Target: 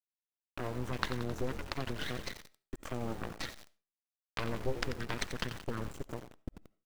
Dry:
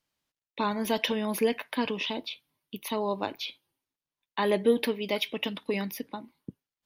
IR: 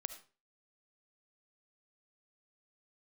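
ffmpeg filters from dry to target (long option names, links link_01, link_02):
-filter_complex "[0:a]afwtdn=0.00891,bass=frequency=250:gain=-2,treble=frequency=4000:gain=5,acompressor=threshold=-41dB:ratio=2.5,aeval=exprs='0.0891*(cos(1*acos(clip(val(0)/0.0891,-1,1)))-cos(1*PI/2))+0.0355*(cos(3*acos(clip(val(0)/0.0891,-1,1)))-cos(3*PI/2))+0.0112*(cos(4*acos(clip(val(0)/0.0891,-1,1)))-cos(4*PI/2))+0.00398*(cos(6*acos(clip(val(0)/0.0891,-1,1)))-cos(6*PI/2))+0.00316*(cos(8*acos(clip(val(0)/0.0891,-1,1)))-cos(8*PI/2))':channel_layout=same,asetrate=24750,aresample=44100,atempo=1.7818,asplit=9[link_01][link_02][link_03][link_04][link_05][link_06][link_07][link_08][link_09];[link_02]adelay=88,afreqshift=-42,volume=-10dB[link_10];[link_03]adelay=176,afreqshift=-84,volume=-14dB[link_11];[link_04]adelay=264,afreqshift=-126,volume=-18dB[link_12];[link_05]adelay=352,afreqshift=-168,volume=-22dB[link_13];[link_06]adelay=440,afreqshift=-210,volume=-26.1dB[link_14];[link_07]adelay=528,afreqshift=-252,volume=-30.1dB[link_15];[link_08]adelay=616,afreqshift=-294,volume=-34.1dB[link_16];[link_09]adelay=704,afreqshift=-336,volume=-38.1dB[link_17];[link_01][link_10][link_11][link_12][link_13][link_14][link_15][link_16][link_17]amix=inputs=9:normalize=0,aeval=exprs='val(0)*gte(abs(val(0)),0.00126)':channel_layout=same,asplit=2[link_18][link_19];[1:a]atrim=start_sample=2205[link_20];[link_19][link_20]afir=irnorm=-1:irlink=0,volume=-5dB[link_21];[link_18][link_21]amix=inputs=2:normalize=0,volume=11dB"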